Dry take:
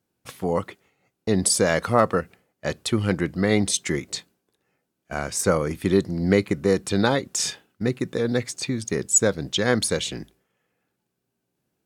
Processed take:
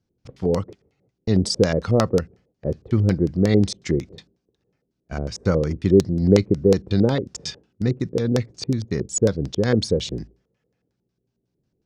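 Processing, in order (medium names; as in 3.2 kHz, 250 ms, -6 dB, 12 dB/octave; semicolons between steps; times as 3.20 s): RIAA curve playback; LFO low-pass square 5.5 Hz 460–5400 Hz; treble shelf 3.7 kHz +12 dB; trim -5.5 dB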